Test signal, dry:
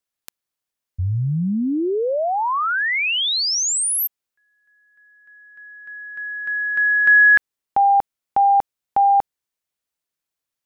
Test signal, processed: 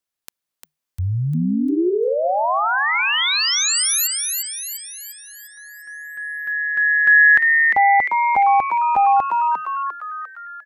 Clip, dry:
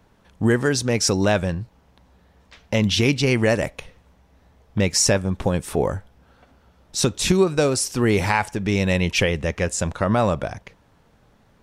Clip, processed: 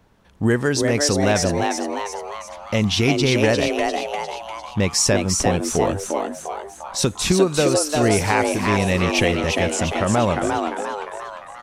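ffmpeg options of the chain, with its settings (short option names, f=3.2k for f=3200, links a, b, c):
-filter_complex "[0:a]asplit=8[a][b][c][d][e][f][g][h];[b]adelay=350,afreqshift=150,volume=-4dB[i];[c]adelay=700,afreqshift=300,volume=-9.7dB[j];[d]adelay=1050,afreqshift=450,volume=-15.4dB[k];[e]adelay=1400,afreqshift=600,volume=-21dB[l];[f]adelay=1750,afreqshift=750,volume=-26.7dB[m];[g]adelay=2100,afreqshift=900,volume=-32.4dB[n];[h]adelay=2450,afreqshift=1050,volume=-38.1dB[o];[a][i][j][k][l][m][n][o]amix=inputs=8:normalize=0"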